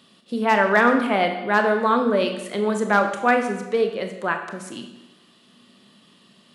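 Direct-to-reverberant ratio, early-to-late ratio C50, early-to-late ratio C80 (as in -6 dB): 5.0 dB, 7.5 dB, 9.5 dB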